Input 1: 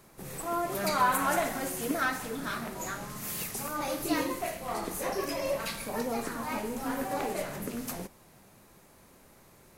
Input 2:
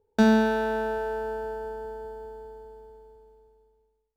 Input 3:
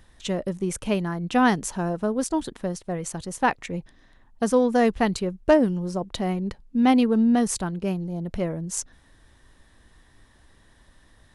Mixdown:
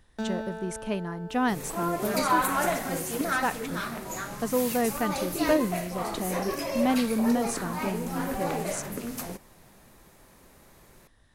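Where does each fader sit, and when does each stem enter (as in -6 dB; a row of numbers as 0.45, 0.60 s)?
+1.5, -13.0, -6.5 dB; 1.30, 0.00, 0.00 s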